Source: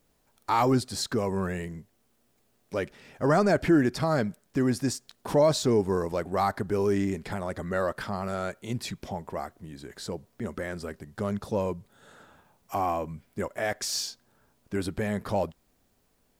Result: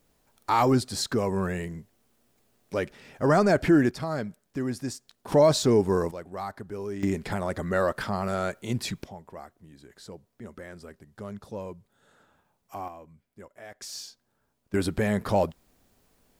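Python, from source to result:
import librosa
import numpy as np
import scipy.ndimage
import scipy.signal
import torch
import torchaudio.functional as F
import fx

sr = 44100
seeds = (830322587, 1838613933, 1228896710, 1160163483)

y = fx.gain(x, sr, db=fx.steps((0.0, 1.5), (3.91, -5.0), (5.32, 2.5), (6.11, -9.0), (7.03, 3.0), (9.04, -8.5), (12.88, -15.5), (13.81, -8.5), (14.74, 4.0)))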